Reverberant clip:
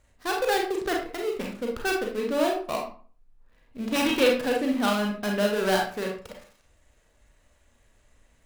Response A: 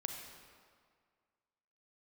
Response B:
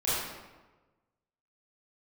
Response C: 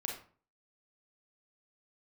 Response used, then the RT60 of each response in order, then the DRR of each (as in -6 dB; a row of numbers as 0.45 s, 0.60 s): C; 1.9 s, 1.2 s, 0.45 s; 3.0 dB, -11.5 dB, -0.5 dB